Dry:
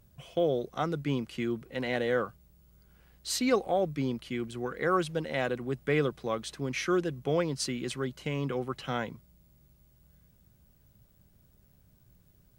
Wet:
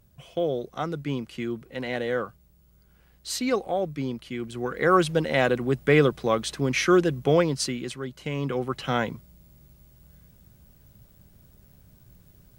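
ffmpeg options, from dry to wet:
-af "volume=7.94,afade=t=in:st=4.37:d=0.69:silence=0.421697,afade=t=out:st=7.28:d=0.71:silence=0.316228,afade=t=in:st=7.99:d=1.11:silence=0.334965"

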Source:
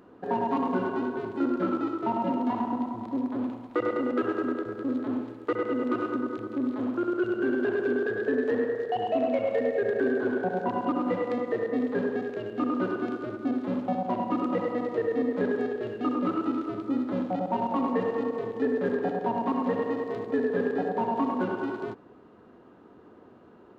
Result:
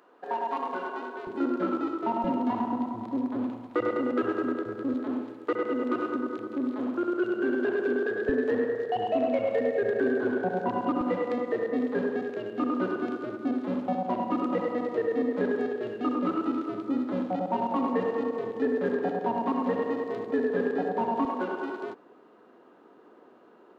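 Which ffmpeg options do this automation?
-af "asetnsamples=n=441:p=0,asendcmd='1.27 highpass f 210;2.24 highpass f 55;4.94 highpass f 190;8.29 highpass f 56;11.01 highpass f 150;21.25 highpass f 320',highpass=580"

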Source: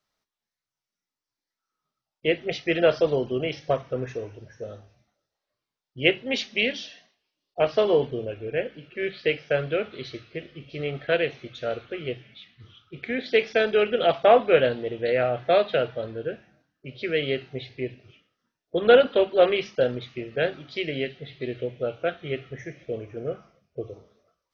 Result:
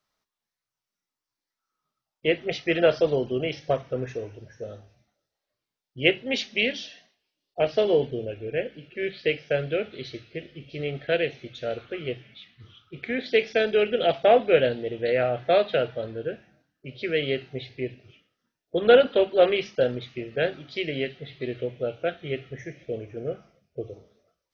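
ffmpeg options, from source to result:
-af "asetnsamples=n=441:p=0,asendcmd='2.86 equalizer g -4;7.61 equalizer g -11.5;11.78 equalizer g 0;13.28 equalizer g -10.5;14.93 equalizer g -4;20.98 equalizer g 2;21.81 equalizer g -8',equalizer=f=1100:t=o:w=0.57:g=2.5"

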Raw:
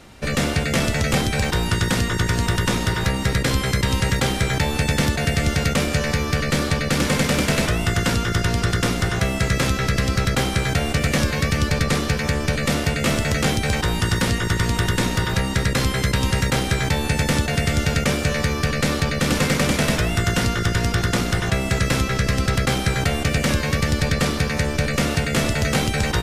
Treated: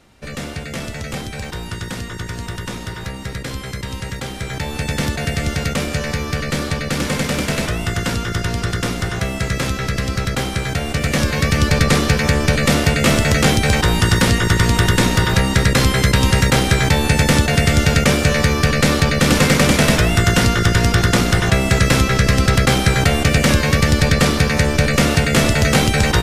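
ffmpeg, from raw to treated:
-af "volume=2,afade=t=in:st=4.31:d=0.75:silence=0.473151,afade=t=in:st=10.85:d=1:silence=0.473151"

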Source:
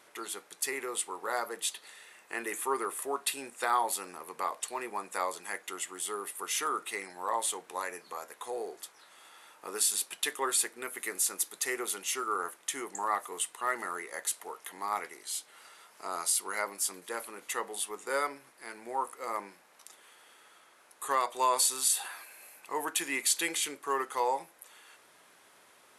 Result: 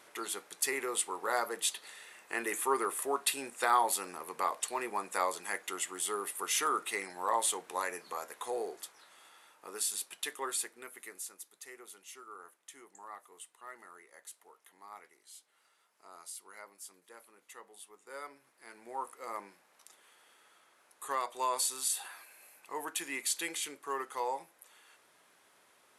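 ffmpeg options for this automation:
-af "volume=4.22,afade=t=out:st=8.51:d=1.01:silence=0.446684,afade=t=out:st=10.46:d=0.95:silence=0.281838,afade=t=in:st=18.03:d=1.05:silence=0.266073"

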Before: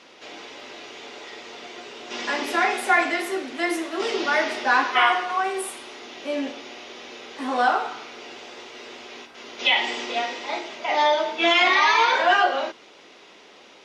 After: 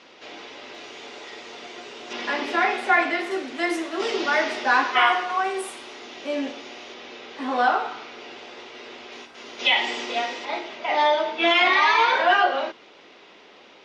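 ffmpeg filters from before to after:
-af "asetnsamples=n=441:p=0,asendcmd='0.75 lowpass f 9800;2.13 lowpass f 4500;3.31 lowpass f 8300;6.94 lowpass f 5000;9.12 lowpass f 10000;10.45 lowpass f 4500',lowpass=5900"

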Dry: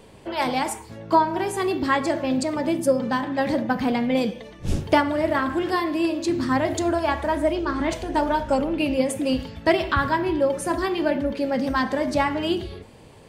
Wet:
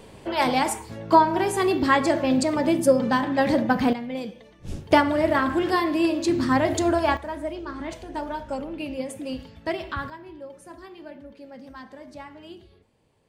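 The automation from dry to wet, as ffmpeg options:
-af "asetnsamples=n=441:p=0,asendcmd='3.93 volume volume -9.5dB;4.91 volume volume 1dB;7.17 volume volume -9dB;10.1 volume volume -19dB',volume=1.26"

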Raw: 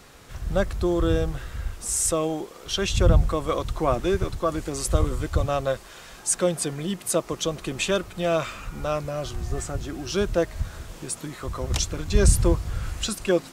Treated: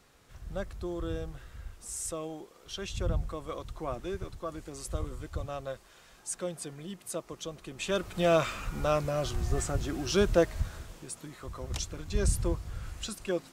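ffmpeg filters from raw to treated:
-af "volume=0.891,afade=t=in:st=7.78:d=0.41:silence=0.251189,afade=t=out:st=10.39:d=0.65:silence=0.354813"

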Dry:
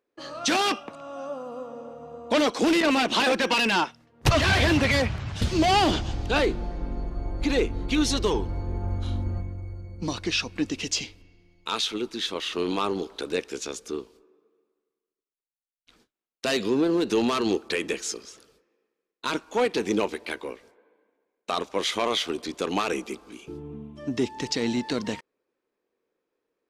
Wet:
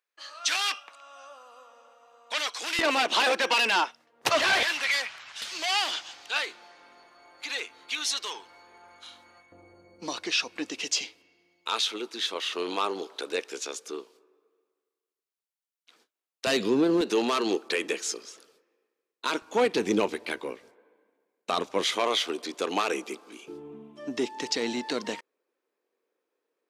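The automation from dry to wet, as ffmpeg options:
-af "asetnsamples=n=441:p=0,asendcmd='2.79 highpass f 500;4.63 highpass f 1400;9.52 highpass f 450;16.47 highpass f 140;17.01 highpass f 320;19.42 highpass f 110;21.96 highpass f 330',highpass=1500"

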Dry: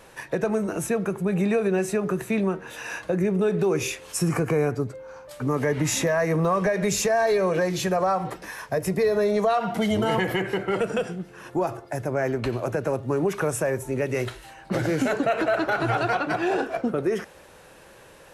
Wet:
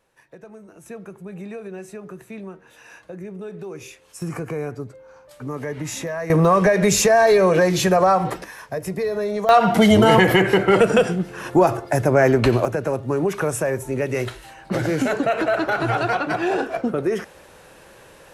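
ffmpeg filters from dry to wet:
-af "asetnsamples=n=441:p=0,asendcmd='0.86 volume volume -11.5dB;4.22 volume volume -5dB;6.3 volume volume 7dB;8.44 volume volume -2dB;9.49 volume volume 10dB;12.65 volume volume 2.5dB',volume=0.126"

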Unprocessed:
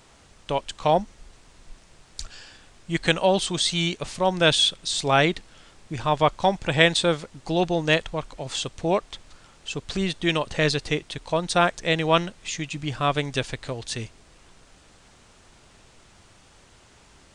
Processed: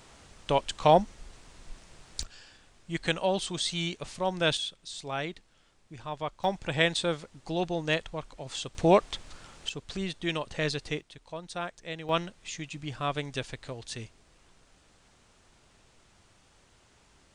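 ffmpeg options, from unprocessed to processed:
-af "asetnsamples=n=441:p=0,asendcmd='2.23 volume volume -7.5dB;4.57 volume volume -14.5dB;6.44 volume volume -7.5dB;8.75 volume volume 2dB;9.69 volume volume -8dB;11.01 volume volume -15.5dB;12.09 volume volume -8dB',volume=1"

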